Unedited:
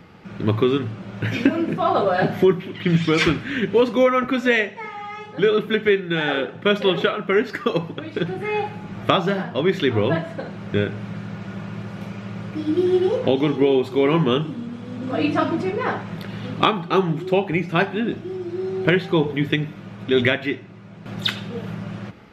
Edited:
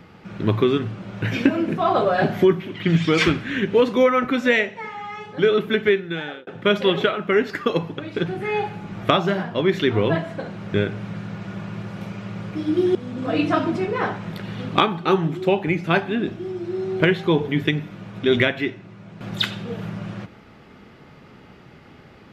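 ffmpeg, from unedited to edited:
-filter_complex "[0:a]asplit=3[a][b][c];[a]atrim=end=6.47,asetpts=PTS-STARTPTS,afade=t=out:st=5.88:d=0.59[d];[b]atrim=start=6.47:end=12.952,asetpts=PTS-STARTPTS,afade=t=in:d=0.004:c=hsin[e];[c]atrim=start=14.798[f];[d][e]concat=n=2:v=0:a=1[g];[g][f]acrossfade=d=0.004:c1=hsin:c2=hsin"

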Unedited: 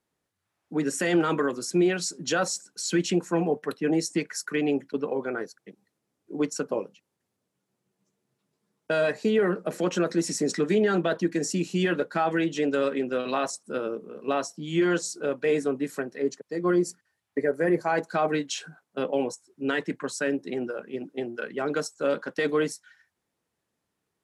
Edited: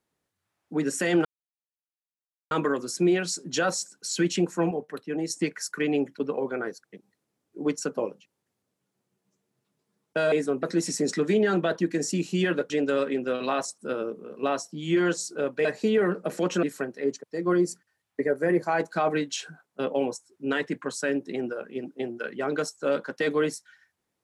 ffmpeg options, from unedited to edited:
-filter_complex "[0:a]asplit=9[a][b][c][d][e][f][g][h][i];[a]atrim=end=1.25,asetpts=PTS-STARTPTS,afade=t=out:st=1.246:d=0.004:c=hsin,apad=pad_dur=1.26[j];[b]atrim=start=1.25:end=3.452,asetpts=PTS-STARTPTS,afade=t=in:d=0.004:c=hsin[k];[c]atrim=start=3.448:end=4.042,asetpts=PTS-STARTPTS,volume=-5.5dB[l];[d]atrim=start=4.038:end=9.062[m];[e]atrim=start=15.498:end=15.812[n];[f]atrim=start=10.038:end=12.112[o];[g]atrim=start=12.548:end=15.502[p];[h]atrim=start=9.058:end=10.042[q];[i]atrim=start=15.808[r];[j][k]concat=n=2:v=0:a=1[s];[s][l]acrossfade=d=0.004:c1=hsin:c2=hsin[t];[t][m]acrossfade=d=0.004:c1=hsin:c2=hsin[u];[u][n]acrossfade=d=0.004:c1=hsin:c2=hsin[v];[v][o]acrossfade=d=0.004:c1=hsin:c2=hsin[w];[w][p]acrossfade=d=0.004:c1=hsin:c2=hsin[x];[x][q]acrossfade=d=0.004:c1=hsin:c2=hsin[y];[y][r]acrossfade=d=0.004:c1=hsin:c2=hsin"

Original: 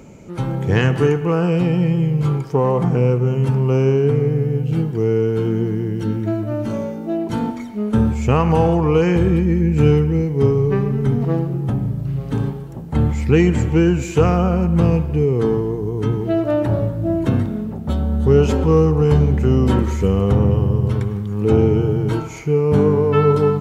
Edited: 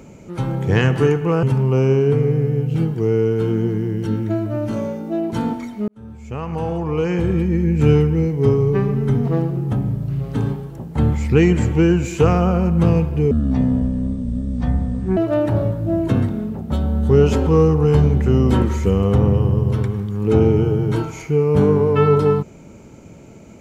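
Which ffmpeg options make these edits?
-filter_complex "[0:a]asplit=5[a][b][c][d][e];[a]atrim=end=1.432[f];[b]atrim=start=3.398:end=7.85,asetpts=PTS-STARTPTS,afade=t=out:st=4.448:d=0.004:c=hsin[g];[c]atrim=start=7.85:end=15.284,asetpts=PTS-STARTPTS,afade=t=in:d=2.01[h];[d]atrim=start=15.28:end=16.34,asetpts=PTS-STARTPTS,asetrate=25137,aresample=44100[i];[e]atrim=start=16.336[j];[g][h]concat=n=2:v=0:a=1[k];[f][k]acrossfade=d=0.004:c1=hsin:c2=hsin[l];[l][i]acrossfade=d=0.004:c1=hsin:c2=hsin[m];[m][j]acrossfade=d=0.004:c1=hsin:c2=hsin"

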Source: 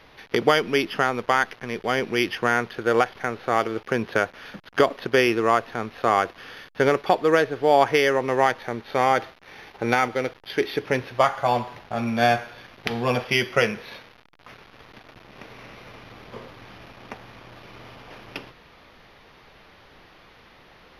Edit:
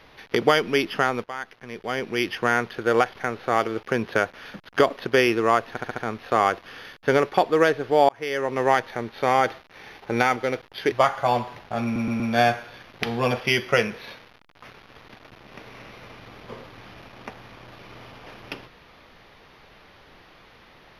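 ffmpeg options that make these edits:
-filter_complex "[0:a]asplit=11[a][b][c][d][e][f][g][h][i][j][k];[a]atrim=end=1.24,asetpts=PTS-STARTPTS,afade=t=out:st=1.236:d=0.004:c=hsin:silence=0.149624[l];[b]atrim=start=1.24:end=5.772,asetpts=PTS-STARTPTS,afade=t=in:d=1.27:silence=0.149624[m];[c]atrim=start=5.698:end=5.772[n];[d]atrim=start=5.698:end=5.772[o];[e]atrim=start=5.698:end=5.772[p];[f]atrim=start=5.698:end=7.81,asetpts=PTS-STARTPTS,afade=t=out:st=2.108:d=0.004:c=hsin[q];[g]atrim=start=7.81:end=10.642,asetpts=PTS-STARTPTS,afade=t=in:d=0.54[r];[h]atrim=start=11.118:end=12.162[s];[i]atrim=start=12.038:end=12.162[t];[j]atrim=start=12.038:end=12.162[u];[k]atrim=start=12.038[v];[l][m]concat=n=2:v=0:a=1[w];[w][n]acrossfade=d=0.004:c1=hsin:c2=hsin[x];[x][o]acrossfade=d=0.004:c1=hsin:c2=hsin[y];[y][p]acrossfade=d=0.004:c1=hsin:c2=hsin[z];[q][r]concat=n=2:v=0:a=1[aa];[z][aa]acrossfade=d=0.004:c1=hsin:c2=hsin[ab];[ab][s]acrossfade=d=0.004:c1=hsin:c2=hsin[ac];[ac][t]acrossfade=d=0.004:c1=hsin:c2=hsin[ad];[ad][u]acrossfade=d=0.004:c1=hsin:c2=hsin[ae];[ae][v]acrossfade=d=0.004:c1=hsin:c2=hsin"

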